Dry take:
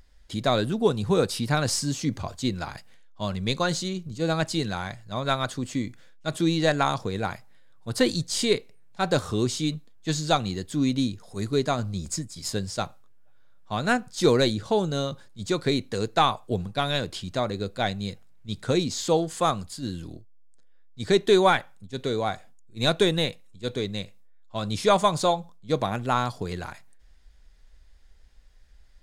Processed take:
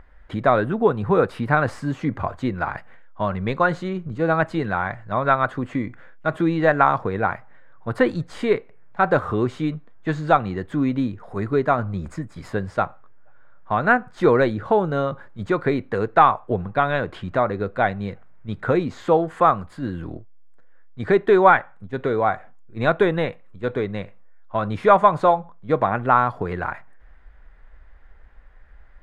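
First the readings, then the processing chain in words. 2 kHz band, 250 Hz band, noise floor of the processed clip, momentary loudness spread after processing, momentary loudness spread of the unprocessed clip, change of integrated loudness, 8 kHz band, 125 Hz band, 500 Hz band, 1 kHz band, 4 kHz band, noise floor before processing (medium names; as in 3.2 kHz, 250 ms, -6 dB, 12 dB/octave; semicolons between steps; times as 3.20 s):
+7.0 dB, +3.0 dB, -46 dBFS, 13 LU, 12 LU, +4.5 dB, under -15 dB, +2.5 dB, +5.0 dB, +8.0 dB, -11.5 dB, -52 dBFS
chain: treble shelf 4.8 kHz +5 dB; in parallel at +3 dB: compression, threshold -33 dBFS, peak gain reduction 17.5 dB; on the sum: FFT filter 220 Hz 0 dB, 1.3 kHz +8 dB, 1.9 kHz +4 dB, 5.3 kHz -26 dB; trim -1 dB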